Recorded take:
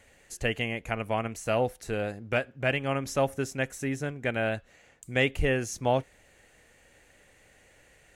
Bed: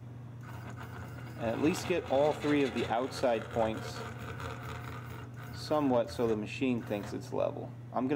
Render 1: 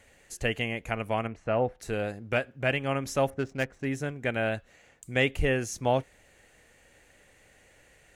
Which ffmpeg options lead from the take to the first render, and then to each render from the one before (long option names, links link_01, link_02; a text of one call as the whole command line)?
ffmpeg -i in.wav -filter_complex "[0:a]asettb=1/sr,asplit=3[link_01][link_02][link_03];[link_01]atrim=end=1.274[link_04];[link_02]atrim=start=1.27:end=1.8,asetpts=PTS-STARTPTS,afade=type=in:duration=0.004:curve=qsin,afade=type=out:start_time=0.526:duration=0.004:curve=qsin,lowpass=1900[link_05];[link_03]atrim=start=1.796[link_06];[link_04][link_05]acrossfade=duration=0.004:curve1=hsin:curve2=qsin[link_07];[link_07][link_06]acrossfade=duration=0.004:curve1=qsin:curve2=hsin,asettb=1/sr,asplit=3[link_08][link_09][link_10];[link_08]atrim=end=3.304[link_11];[link_09]atrim=start=3.3:end=3.85,asetpts=PTS-STARTPTS,afade=type=in:duration=0.004:curve=qsin,afade=type=out:start_time=0.546:duration=0.004:curve=qsin,adynamicsmooth=sensitivity=7.5:basefreq=1400[link_12];[link_10]atrim=start=3.846[link_13];[link_11][link_12]acrossfade=duration=0.004:curve1=hsin:curve2=qsin[link_14];[link_14][link_13]acrossfade=duration=0.004:curve1=qsin:curve2=hsin" out.wav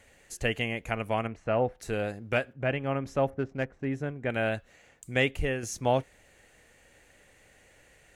ffmpeg -i in.wav -filter_complex "[0:a]asettb=1/sr,asplit=3[link_01][link_02][link_03];[link_01]atrim=end=2.534[link_04];[link_02]atrim=start=2.53:end=4.3,asetpts=PTS-STARTPTS,afade=type=in:duration=0.004:curve=qsin,afade=type=out:start_time=1.766:duration=0.004:curve=qsin,lowpass=frequency=1400:poles=1[link_05];[link_03]atrim=start=4.296[link_06];[link_04][link_05]acrossfade=duration=0.004:curve1=hsin:curve2=qsin[link_07];[link_07][link_06]acrossfade=duration=0.004:curve1=qsin:curve2=hsin,asplit=2[link_08][link_09];[link_08]atrim=end=5.63,asetpts=PTS-STARTPTS,afade=type=out:start_time=5.16:duration=0.47:silence=0.473151[link_10];[link_09]atrim=start=5.63,asetpts=PTS-STARTPTS,afade=type=in:duration=0.004:curve=hsin:silence=0.473151[link_11];[link_10][link_11]concat=n=2:v=0:a=1" out.wav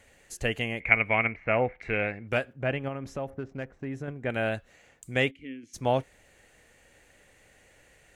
ffmpeg -i in.wav -filter_complex "[0:a]asettb=1/sr,asplit=3[link_01][link_02][link_03];[link_01]atrim=end=0.804[link_04];[link_02]atrim=start=0.8:end=2.28,asetpts=PTS-STARTPTS,afade=type=in:duration=0.004:curve=qsin,afade=type=out:start_time=1.476:duration=0.004:curve=qsin,lowpass=frequency=2200:width_type=q:width=13[link_05];[link_03]atrim=start=2.276[link_06];[link_04][link_05]acrossfade=duration=0.004:curve1=hsin:curve2=qsin[link_07];[link_07][link_06]acrossfade=duration=0.004:curve1=qsin:curve2=hsin,asettb=1/sr,asplit=3[link_08][link_09][link_10];[link_08]atrim=end=2.884[link_11];[link_09]atrim=start=2.88:end=4.08,asetpts=PTS-STARTPTS,afade=type=in:duration=0.004:curve=qsin,afade=type=out:start_time=1.196:duration=0.004:curve=qsin,acompressor=threshold=-31dB:ratio=3:attack=3.2:release=140:knee=1:detection=peak[link_12];[link_10]atrim=start=4.076[link_13];[link_11][link_12]acrossfade=duration=0.004:curve1=hsin:curve2=qsin[link_14];[link_14][link_13]acrossfade=duration=0.004:curve1=qsin:curve2=hsin,asplit=3[link_15][link_16][link_17];[link_15]afade=type=out:start_time=5.3:duration=0.02[link_18];[link_16]asplit=3[link_19][link_20][link_21];[link_19]bandpass=frequency=270:width_type=q:width=8,volume=0dB[link_22];[link_20]bandpass=frequency=2290:width_type=q:width=8,volume=-6dB[link_23];[link_21]bandpass=frequency=3010:width_type=q:width=8,volume=-9dB[link_24];[link_22][link_23][link_24]amix=inputs=3:normalize=0,afade=type=in:start_time=5.3:duration=0.02,afade=type=out:start_time=5.73:duration=0.02[link_25];[link_17]afade=type=in:start_time=5.73:duration=0.02[link_26];[link_18][link_25][link_26]amix=inputs=3:normalize=0" out.wav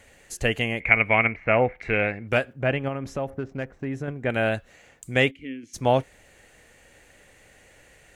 ffmpeg -i in.wav -af "volume=5dB,alimiter=limit=-2dB:level=0:latency=1" out.wav